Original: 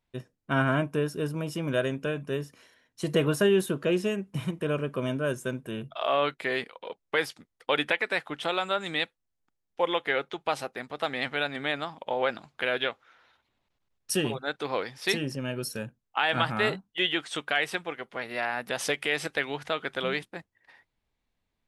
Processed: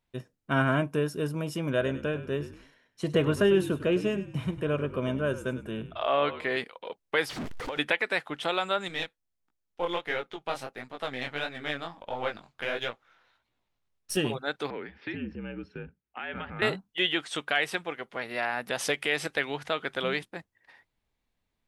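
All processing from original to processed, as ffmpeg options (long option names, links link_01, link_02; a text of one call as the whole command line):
ffmpeg -i in.wav -filter_complex "[0:a]asettb=1/sr,asplit=3[link_01][link_02][link_03];[link_01]atrim=end=1.704[link_04];[link_02]atrim=start=1.7:end=6.57,asetpts=PTS-STARTPTS,afade=type=in:duration=0.004:curve=qsin,afade=type=out:start_time=4.866:duration=0.004:curve=qsin,highshelf=frequency=5700:gain=-10,asplit=4[link_05][link_06][link_07][link_08];[link_06]adelay=100,afreqshift=-50,volume=-13.5dB[link_09];[link_07]adelay=200,afreqshift=-100,volume=-22.9dB[link_10];[link_08]adelay=300,afreqshift=-150,volume=-32.2dB[link_11];[link_05][link_09][link_10][link_11]amix=inputs=4:normalize=0,atrim=end_sample=214767[link_12];[link_03]atrim=start=6.566[link_13];[link_04][link_12]acrossfade=duration=0.004:curve1=hsin:curve2=qsin[link_14];[link_14][link_13]acrossfade=duration=0.004:curve1=qsin:curve2=hsin,asettb=1/sr,asplit=3[link_15][link_16][link_17];[link_15]atrim=end=7.294[link_18];[link_16]atrim=start=7.29:end=7.79,asetpts=PTS-STARTPTS,afade=type=in:duration=0.004:curve=qsin,afade=type=out:start_time=0.496:duration=0.004:curve=qsin,aeval=exprs='val(0)+0.5*0.0355*sgn(val(0))':channel_layout=same,aemphasis=mode=reproduction:type=75fm,acompressor=threshold=-31dB:ratio=10:attack=3.2:release=140:knee=1:detection=peak[link_19];[link_17]atrim=start=7.786[link_20];[link_18][link_19]acrossfade=duration=0.004:curve1=hsin:curve2=qsin[link_21];[link_21][link_20]acrossfade=duration=0.004:curve1=qsin:curve2=hsin,asettb=1/sr,asplit=3[link_22][link_23][link_24];[link_22]atrim=end=8.884[link_25];[link_23]atrim=start=8.88:end=14.17,asetpts=PTS-STARTPTS,afade=type=in:duration=0.004:curve=qsin,afade=type=out:start_time=5.286:duration=0.004:curve=qsin,aeval=exprs='if(lt(val(0),0),0.708*val(0),val(0))':channel_layout=same,flanger=delay=16.5:depth=7.2:speed=1.5[link_26];[link_24]atrim=start=14.166[link_27];[link_25][link_26]acrossfade=duration=0.004:curve1=hsin:curve2=qsin[link_28];[link_28][link_27]acrossfade=duration=0.004:curve1=qsin:curve2=hsin,asettb=1/sr,asplit=3[link_29][link_30][link_31];[link_29]atrim=end=14.704[link_32];[link_30]atrim=start=14.7:end=16.62,asetpts=PTS-STARTPTS,afade=type=in:duration=0.004:curve=qsin,afade=type=out:start_time=1.916:duration=0.004:curve=qsin,acompressor=threshold=-35dB:ratio=2:attack=3.2:release=140:knee=1:detection=peak,afreqshift=-61,highpass=110,equalizer=frequency=240:width_type=q:width=4:gain=5,equalizer=frequency=680:width_type=q:width=4:gain=-9,equalizer=frequency=1100:width_type=q:width=4:gain=-8,lowpass=frequency=2600:width=0.5412,lowpass=frequency=2600:width=1.3066[link_33];[link_31]atrim=start=16.616[link_34];[link_32][link_33]acrossfade=duration=0.004:curve1=hsin:curve2=qsin[link_35];[link_35][link_34]acrossfade=duration=0.004:curve1=qsin:curve2=hsin" out.wav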